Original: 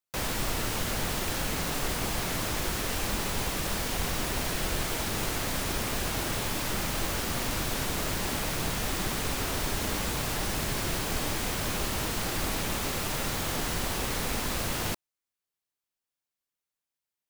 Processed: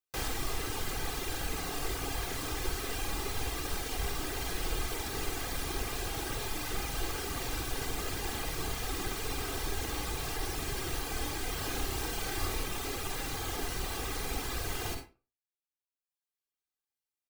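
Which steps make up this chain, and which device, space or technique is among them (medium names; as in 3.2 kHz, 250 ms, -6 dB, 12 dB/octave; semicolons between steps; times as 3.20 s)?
11.53–12.64 s: flutter echo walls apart 5.6 m, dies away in 0.29 s; reverb removal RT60 1.2 s; microphone above a desk (comb 2.5 ms, depth 55%; reverberation RT60 0.35 s, pre-delay 46 ms, DRR 4 dB); trim -5 dB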